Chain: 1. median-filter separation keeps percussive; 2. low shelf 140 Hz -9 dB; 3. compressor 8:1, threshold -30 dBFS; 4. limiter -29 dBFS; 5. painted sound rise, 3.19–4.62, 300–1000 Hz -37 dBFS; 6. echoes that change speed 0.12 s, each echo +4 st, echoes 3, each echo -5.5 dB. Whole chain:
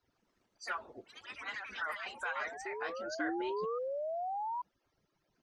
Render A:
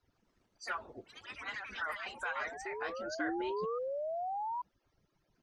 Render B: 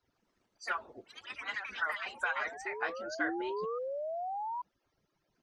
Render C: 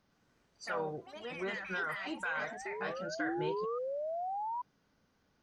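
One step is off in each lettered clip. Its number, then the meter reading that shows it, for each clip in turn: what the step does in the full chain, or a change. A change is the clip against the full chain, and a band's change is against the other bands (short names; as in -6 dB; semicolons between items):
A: 2, 125 Hz band +4.5 dB; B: 4, crest factor change +2.5 dB; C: 1, 125 Hz band +14.5 dB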